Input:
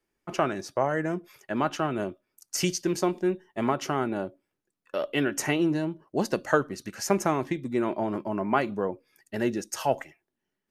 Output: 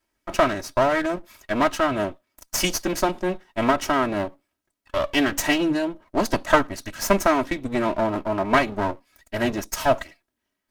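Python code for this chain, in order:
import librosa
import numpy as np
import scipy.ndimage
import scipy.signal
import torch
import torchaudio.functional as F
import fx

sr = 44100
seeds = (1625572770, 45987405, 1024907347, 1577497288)

y = fx.lower_of_two(x, sr, delay_ms=3.1)
y = fx.peak_eq(y, sr, hz=360.0, db=-8.5, octaves=0.39)
y = F.gain(torch.from_numpy(y), 7.0).numpy()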